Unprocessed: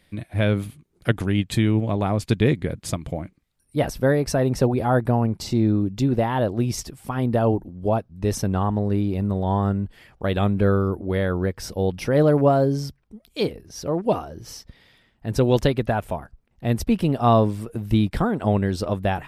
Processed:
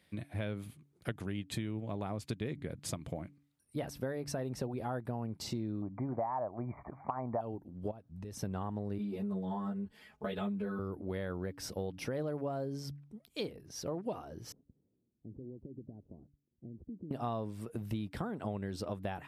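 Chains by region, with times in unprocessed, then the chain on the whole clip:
0:05.82–0:07.41: linear-phase brick-wall low-pass 2,400 Hz + flat-topped bell 850 Hz +15.5 dB 1.2 octaves
0:07.91–0:08.42: low-shelf EQ 170 Hz +5.5 dB + downward compressor 8 to 1, threshold −32 dBFS
0:08.98–0:10.79: comb filter 4.7 ms, depth 97% + string-ensemble chorus
0:14.52–0:17.11: variable-slope delta modulation 32 kbit/s + downward compressor 16 to 1, threshold −27 dBFS + transistor ladder low-pass 400 Hz, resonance 40%
whole clip: high-pass filter 86 Hz; hum removal 143 Hz, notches 2; downward compressor 6 to 1, threshold −27 dBFS; level −7.5 dB

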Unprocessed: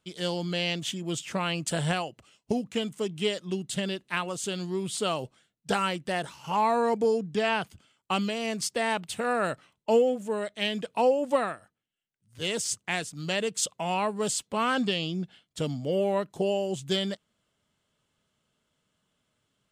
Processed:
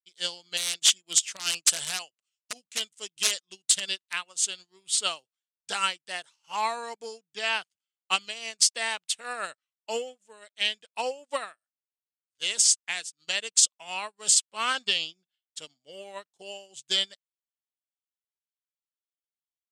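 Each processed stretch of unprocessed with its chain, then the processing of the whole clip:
0:00.57–0:04.13: high-shelf EQ 2,900 Hz +5.5 dB + wrap-around overflow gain 19 dB
whole clip: meter weighting curve ITU-R 468; boost into a limiter +10 dB; expander for the loud parts 2.5 to 1, over −37 dBFS; level −6 dB

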